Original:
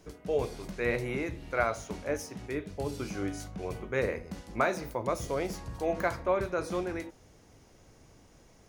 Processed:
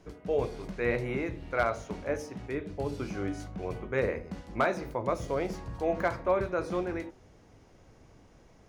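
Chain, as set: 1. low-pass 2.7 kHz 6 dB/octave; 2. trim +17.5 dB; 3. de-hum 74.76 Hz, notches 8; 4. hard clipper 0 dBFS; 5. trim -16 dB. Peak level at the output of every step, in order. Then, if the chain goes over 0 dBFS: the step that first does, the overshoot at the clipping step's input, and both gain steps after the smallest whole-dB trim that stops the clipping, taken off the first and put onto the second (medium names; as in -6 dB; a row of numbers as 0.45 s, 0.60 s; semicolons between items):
-13.5 dBFS, +4.0 dBFS, +4.0 dBFS, 0.0 dBFS, -16.0 dBFS; step 2, 4.0 dB; step 2 +13.5 dB, step 5 -12 dB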